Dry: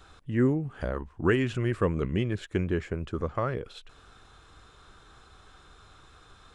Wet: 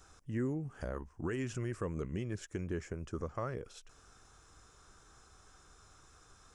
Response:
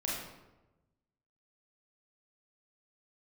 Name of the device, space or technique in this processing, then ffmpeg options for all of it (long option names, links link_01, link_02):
over-bright horn tweeter: -af "highshelf=frequency=4700:width_type=q:width=3:gain=6.5,alimiter=limit=-20dB:level=0:latency=1:release=181,volume=-7dB"